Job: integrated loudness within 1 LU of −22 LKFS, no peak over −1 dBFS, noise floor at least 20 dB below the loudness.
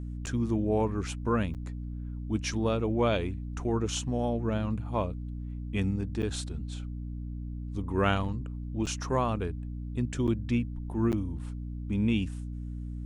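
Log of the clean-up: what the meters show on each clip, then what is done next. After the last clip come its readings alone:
number of dropouts 6; longest dropout 8.1 ms; mains hum 60 Hz; hum harmonics up to 300 Hz; level of the hum −34 dBFS; integrated loudness −31.5 LKFS; sample peak −12.5 dBFS; target loudness −22.0 LKFS
→ repair the gap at 0:00.26/0:01.54/0:06.22/0:08.86/0:10.27/0:11.12, 8.1 ms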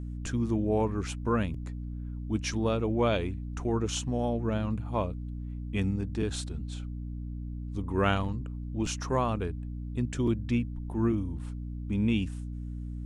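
number of dropouts 0; mains hum 60 Hz; hum harmonics up to 300 Hz; level of the hum −34 dBFS
→ hum removal 60 Hz, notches 5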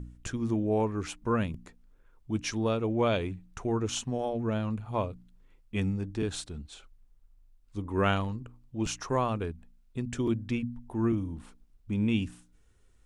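mains hum none found; integrated loudness −31.5 LKFS; sample peak −13.0 dBFS; target loudness −22.0 LKFS
→ level +9.5 dB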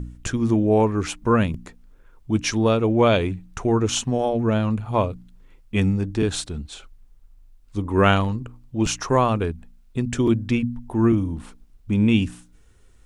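integrated loudness −22.0 LKFS; sample peak −3.5 dBFS; background noise floor −53 dBFS

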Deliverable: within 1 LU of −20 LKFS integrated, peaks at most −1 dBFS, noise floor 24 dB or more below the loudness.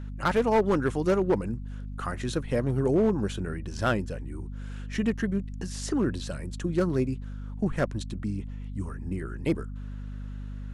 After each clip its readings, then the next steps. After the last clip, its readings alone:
share of clipped samples 0.6%; peaks flattened at −17.0 dBFS; mains hum 50 Hz; hum harmonics up to 250 Hz; level of the hum −34 dBFS; integrated loudness −29.0 LKFS; sample peak −17.0 dBFS; target loudness −20.0 LKFS
→ clipped peaks rebuilt −17 dBFS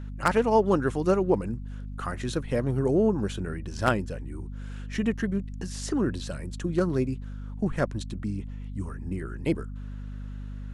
share of clipped samples 0.0%; mains hum 50 Hz; hum harmonics up to 250 Hz; level of the hum −34 dBFS
→ hum removal 50 Hz, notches 5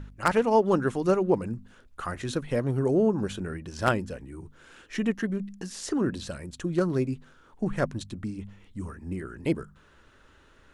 mains hum none found; integrated loudness −28.5 LKFS; sample peak −7.5 dBFS; target loudness −20.0 LKFS
→ level +8.5 dB
brickwall limiter −1 dBFS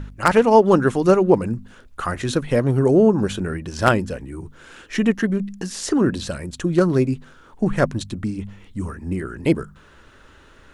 integrated loudness −20.0 LKFS; sample peak −1.0 dBFS; background noise floor −49 dBFS

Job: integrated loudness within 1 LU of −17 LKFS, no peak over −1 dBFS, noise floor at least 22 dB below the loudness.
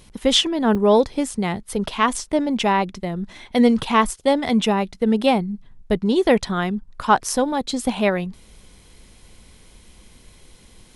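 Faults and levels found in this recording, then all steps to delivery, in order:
number of dropouts 1; longest dropout 2.5 ms; integrated loudness −20.5 LKFS; sample peak −3.5 dBFS; target loudness −17.0 LKFS
→ repair the gap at 0:00.75, 2.5 ms
level +3.5 dB
brickwall limiter −1 dBFS

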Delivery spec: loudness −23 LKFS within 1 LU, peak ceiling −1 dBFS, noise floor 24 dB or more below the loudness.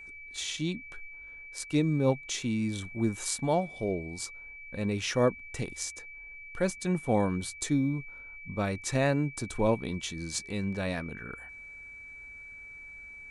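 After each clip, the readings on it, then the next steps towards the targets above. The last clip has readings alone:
interfering tone 2,300 Hz; level of the tone −44 dBFS; integrated loudness −31.0 LKFS; sample peak −13.5 dBFS; target loudness −23.0 LKFS
→ notch filter 2,300 Hz, Q 30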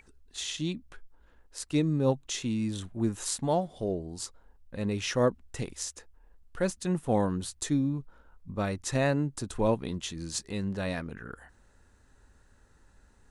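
interfering tone none found; integrated loudness −31.5 LKFS; sample peak −13.5 dBFS; target loudness −23.0 LKFS
→ level +8.5 dB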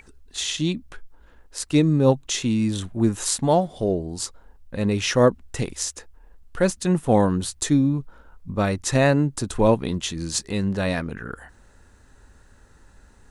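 integrated loudness −23.0 LKFS; sample peak −5.0 dBFS; background noise floor −53 dBFS

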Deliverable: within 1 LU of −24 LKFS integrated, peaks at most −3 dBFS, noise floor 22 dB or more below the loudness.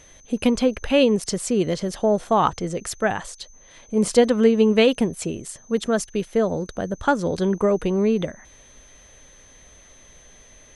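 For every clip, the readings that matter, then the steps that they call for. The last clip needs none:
interfering tone 6,200 Hz; level of the tone −50 dBFS; integrated loudness −21.5 LKFS; sample peak −4.5 dBFS; target loudness −24.0 LKFS
→ notch filter 6,200 Hz, Q 30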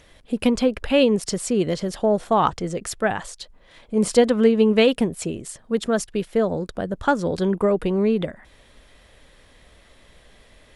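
interfering tone none found; integrated loudness −21.5 LKFS; sample peak −4.5 dBFS; target loudness −24.0 LKFS
→ level −2.5 dB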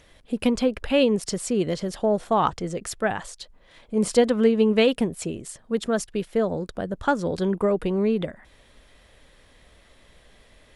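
integrated loudness −24.0 LKFS; sample peak −7.0 dBFS; background noise floor −56 dBFS

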